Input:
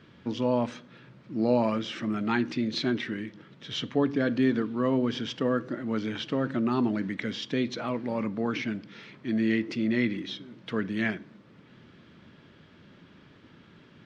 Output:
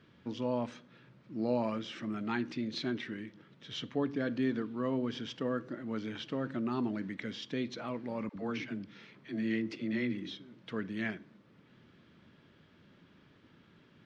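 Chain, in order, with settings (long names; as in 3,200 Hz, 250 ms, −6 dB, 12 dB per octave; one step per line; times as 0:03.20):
0:08.29–0:10.35: all-pass dispersion lows, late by 69 ms, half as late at 400 Hz
level −7.5 dB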